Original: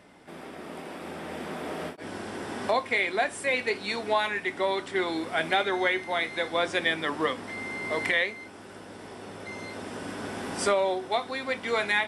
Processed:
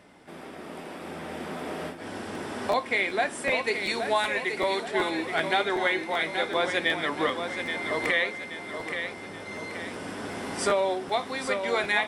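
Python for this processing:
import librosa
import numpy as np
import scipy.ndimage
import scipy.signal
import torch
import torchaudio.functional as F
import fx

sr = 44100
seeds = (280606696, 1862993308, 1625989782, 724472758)

y = fx.high_shelf(x, sr, hz=7600.0, db=9.0, at=(3.64, 4.84))
y = fx.echo_feedback(y, sr, ms=827, feedback_pct=45, wet_db=-7.5)
y = fx.buffer_crackle(y, sr, first_s=0.81, period_s=0.38, block=512, kind='repeat')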